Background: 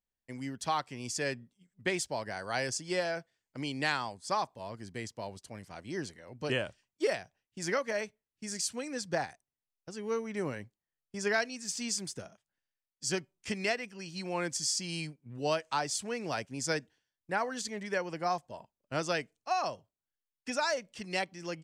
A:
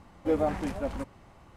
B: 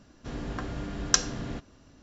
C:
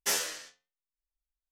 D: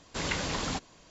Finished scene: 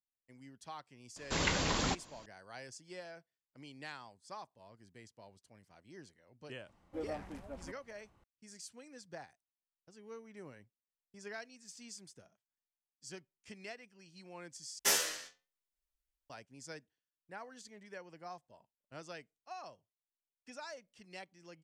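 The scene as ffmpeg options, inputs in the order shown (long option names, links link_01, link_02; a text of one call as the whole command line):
ffmpeg -i bed.wav -i cue0.wav -i cue1.wav -i cue2.wav -i cue3.wav -filter_complex "[0:a]volume=-16dB,asplit=2[link_01][link_02];[link_01]atrim=end=14.794[link_03];[3:a]atrim=end=1.51,asetpts=PTS-STARTPTS,volume=-0.5dB[link_04];[link_02]atrim=start=16.296[link_05];[4:a]atrim=end=1.1,asetpts=PTS-STARTPTS,volume=-0.5dB,afade=type=in:duration=0.004:curve=hsin,afade=type=out:start_time=1.096:duration=0.004:curve=hsin,adelay=1160[link_06];[1:a]atrim=end=1.56,asetpts=PTS-STARTPTS,volume=-15dB,afade=type=in:duration=0.004:curve=hsin,afade=type=out:start_time=1.556:duration=0.004:curve=hsin,adelay=6680[link_07];[link_03][link_04]acrossfade=duration=0.004:curve1=hsin:curve2=hsin[link_08];[link_08][link_05]acrossfade=duration=0.004:curve1=hsin:curve2=hsin[link_09];[link_09][link_06][link_07]amix=inputs=3:normalize=0" out.wav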